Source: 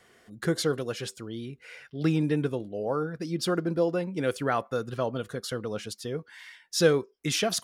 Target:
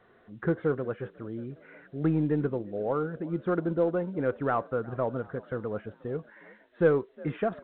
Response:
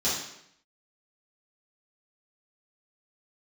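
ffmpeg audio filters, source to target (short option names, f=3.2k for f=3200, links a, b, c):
-filter_complex "[0:a]lowpass=f=1.6k:w=0.5412,lowpass=f=1.6k:w=1.3066,asplit=5[a][b][c][d][e];[b]adelay=360,afreqshift=50,volume=-23.5dB[f];[c]adelay=720,afreqshift=100,volume=-28.7dB[g];[d]adelay=1080,afreqshift=150,volume=-33.9dB[h];[e]adelay=1440,afreqshift=200,volume=-39.1dB[i];[a][f][g][h][i]amix=inputs=5:normalize=0,asplit=2[j][k];[k]asoftclip=type=tanh:threshold=-19dB,volume=-6dB[l];[j][l]amix=inputs=2:normalize=0,asubboost=boost=2:cutoff=75,volume=-3dB" -ar 8000 -c:a pcm_alaw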